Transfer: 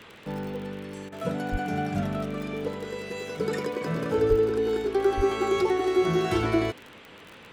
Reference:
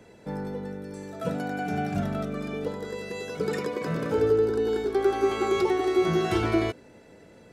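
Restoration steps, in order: de-click; 1.51–1.63 s: high-pass 140 Hz 24 dB/octave; 4.29–4.41 s: high-pass 140 Hz 24 dB/octave; 5.16–5.28 s: high-pass 140 Hz 24 dB/octave; interpolate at 1.09 s, 30 ms; noise print and reduce 6 dB

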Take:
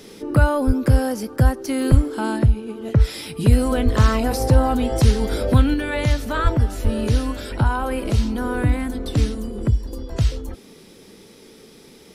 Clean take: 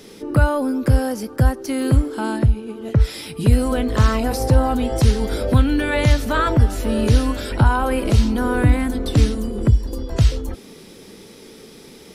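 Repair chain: de-plosive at 0.66/1.90/3.84/6.43/6.83 s; gain correction +4 dB, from 5.74 s

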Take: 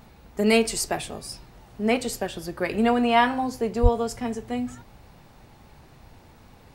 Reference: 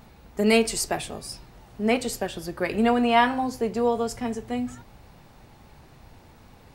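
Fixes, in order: 3.82–3.94 s: high-pass 140 Hz 24 dB/octave

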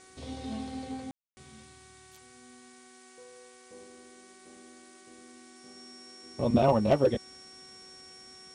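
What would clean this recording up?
de-hum 375.1 Hz, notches 6; band-stop 5.5 kHz, Q 30; room tone fill 1.11–1.37 s; noise reduction 22 dB, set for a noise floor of -55 dBFS

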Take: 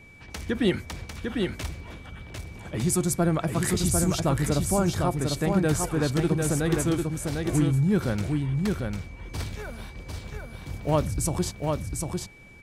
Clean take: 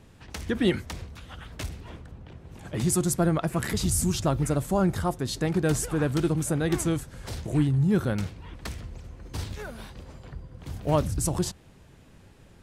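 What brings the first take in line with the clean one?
band-stop 2.3 kHz, Q 30; inverse comb 749 ms -4 dB

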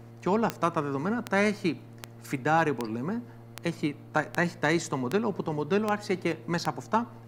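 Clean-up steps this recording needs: clip repair -11.5 dBFS; de-click; de-hum 116 Hz, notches 5

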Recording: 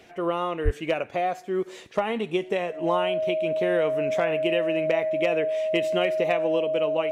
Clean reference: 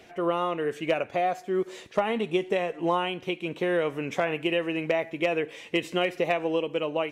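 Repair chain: band-stop 630 Hz, Q 30; 0.64–0.76 s: high-pass 140 Hz 24 dB/octave

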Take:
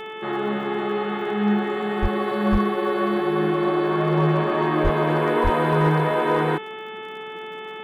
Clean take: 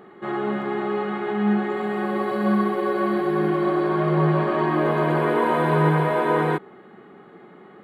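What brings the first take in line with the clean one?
clip repair -11.5 dBFS; de-click; de-hum 435.7 Hz, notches 8; de-plosive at 2.01/2.51/4.83/5.43 s

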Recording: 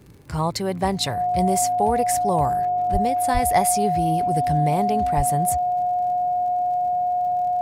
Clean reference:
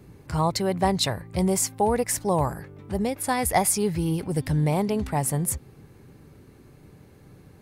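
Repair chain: de-click; band-stop 720 Hz, Q 30; 2.92–3.04 s: high-pass 140 Hz 24 dB/octave; 3.33–3.45 s: high-pass 140 Hz 24 dB/octave; 5.16–5.28 s: high-pass 140 Hz 24 dB/octave

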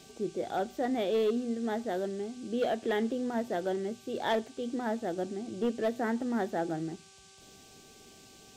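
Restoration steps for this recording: clip repair -23 dBFS; de-hum 388 Hz, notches 4; noise print and reduce 23 dB

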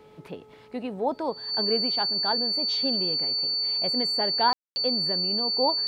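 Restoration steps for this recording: de-hum 429.9 Hz, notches 3; band-stop 4.5 kHz, Q 30; room tone fill 4.53–4.76 s

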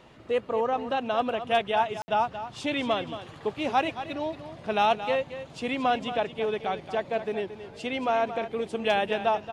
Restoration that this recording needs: room tone fill 2.02–2.08 s; inverse comb 226 ms -11.5 dB

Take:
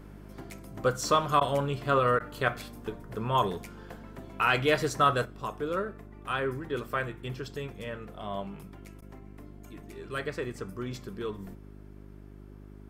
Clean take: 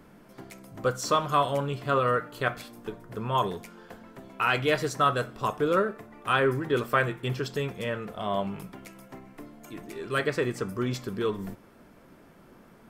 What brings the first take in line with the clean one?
de-hum 50.4 Hz, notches 8; interpolate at 1.40/2.19/9.01 s, 10 ms; trim 0 dB, from 5.25 s +7 dB

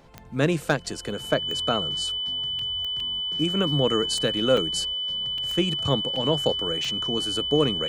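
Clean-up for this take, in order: clip repair -8.5 dBFS; de-click; band-stop 3 kHz, Q 30; interpolate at 2.59/3.00/4.57/5.38/6.16 s, 2.8 ms

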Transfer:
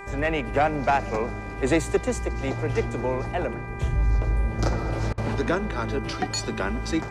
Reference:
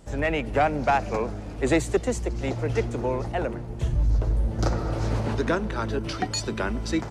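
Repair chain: de-hum 396.5 Hz, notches 6; band-stop 980 Hz, Q 30; interpolate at 5.13 s, 46 ms

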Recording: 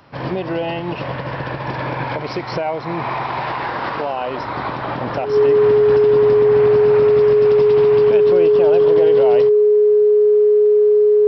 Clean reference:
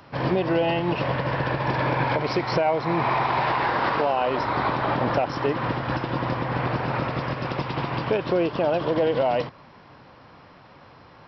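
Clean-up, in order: band-stop 420 Hz, Q 30

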